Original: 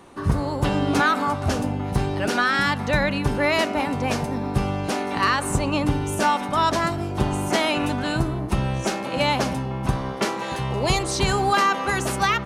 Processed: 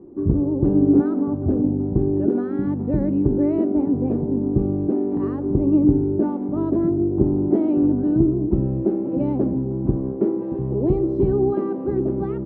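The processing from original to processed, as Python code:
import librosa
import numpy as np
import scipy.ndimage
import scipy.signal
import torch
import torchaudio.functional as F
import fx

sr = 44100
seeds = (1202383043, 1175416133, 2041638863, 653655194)

y = fx.lowpass_res(x, sr, hz=340.0, q=4.1)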